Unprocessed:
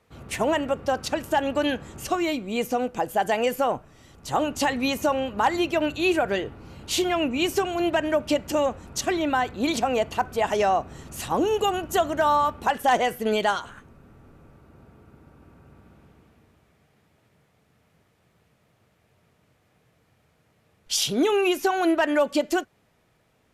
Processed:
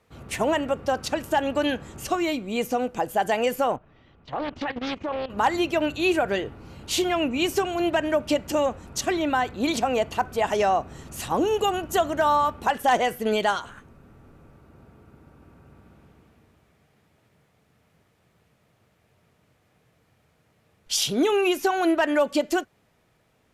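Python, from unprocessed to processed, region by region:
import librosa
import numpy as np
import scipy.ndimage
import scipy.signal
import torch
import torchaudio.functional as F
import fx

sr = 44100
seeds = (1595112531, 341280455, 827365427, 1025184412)

y = fx.chain(x, sr, fx.lowpass(hz=3500.0, slope=24),
    fx.level_steps(step_db=14),
    fx.doppler_dist(depth_ms=0.64), at=(3.76, 5.3))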